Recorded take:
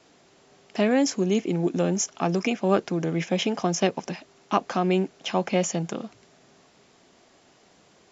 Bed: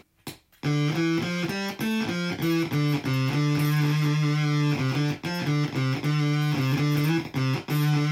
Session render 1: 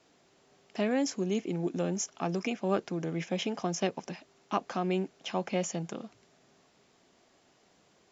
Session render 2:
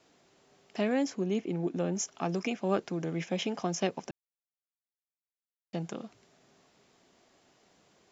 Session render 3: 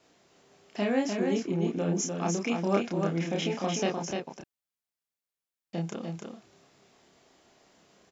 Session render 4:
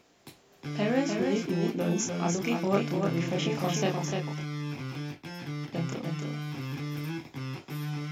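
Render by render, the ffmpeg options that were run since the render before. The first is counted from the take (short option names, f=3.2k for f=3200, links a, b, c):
-af "volume=-7.5dB"
-filter_complex "[0:a]asettb=1/sr,asplit=3[a][b][c];[a]atrim=end=1.034[d];[b]atrim=start=1.03:end=1.96,asetpts=PTS-STARTPTS,afade=t=in:d=0.004:c=qsin,afade=t=out:st=0.926:d=0.004:c=qsin,lowpass=f=3.2k:p=1[e];[c]atrim=start=1.956[f];[d][e]acrossfade=d=0.004:c1=hsin:c2=qsin[g];[g][f]acrossfade=d=0.004:c1=qsin:c2=hsin,asplit=3[h][i][j];[h]atrim=end=4.11,asetpts=PTS-STARTPTS,afade=t=out:st=4.106:d=0.004:c=hsin[k];[i]atrim=start=4.11:end=5.73,asetpts=PTS-STARTPTS,volume=0[l];[j]atrim=start=5.73,asetpts=PTS-STARTPTS,afade=t=in:d=0.004:c=hsin[m];[k][l][m]concat=n=3:v=0:a=1"
-filter_complex "[0:a]asplit=2[a][b];[b]adelay=30,volume=-2.5dB[c];[a][c]amix=inputs=2:normalize=0,asplit=2[d][e];[e]aecho=0:1:299:0.596[f];[d][f]amix=inputs=2:normalize=0"
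-filter_complex "[1:a]volume=-11.5dB[a];[0:a][a]amix=inputs=2:normalize=0"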